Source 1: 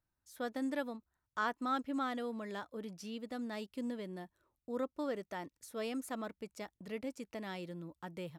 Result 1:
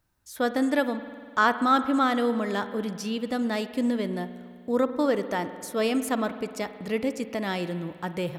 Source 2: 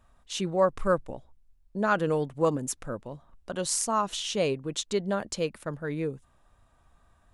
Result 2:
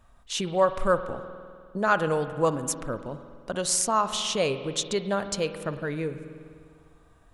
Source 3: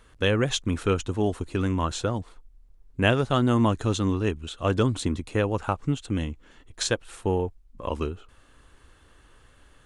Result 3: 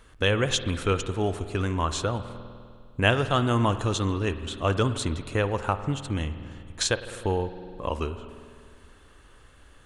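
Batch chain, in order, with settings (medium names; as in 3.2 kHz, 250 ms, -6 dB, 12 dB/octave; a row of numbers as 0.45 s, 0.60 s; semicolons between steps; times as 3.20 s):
spring tank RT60 2.1 s, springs 50 ms, chirp 20 ms, DRR 11 dB; dynamic bell 240 Hz, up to -6 dB, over -35 dBFS, Q 0.72; normalise loudness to -27 LUFS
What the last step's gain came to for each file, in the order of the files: +13.5 dB, +3.5 dB, +2.0 dB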